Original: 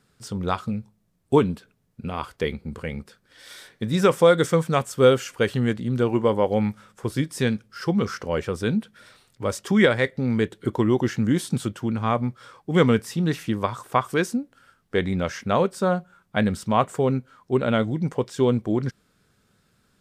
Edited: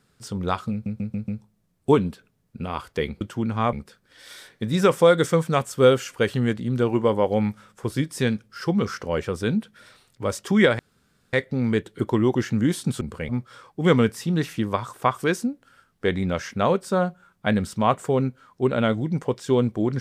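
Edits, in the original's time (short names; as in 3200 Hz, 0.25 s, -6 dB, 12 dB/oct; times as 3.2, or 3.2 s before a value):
0.72 stutter 0.14 s, 5 plays
2.65–2.93 swap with 11.67–12.19
9.99 insert room tone 0.54 s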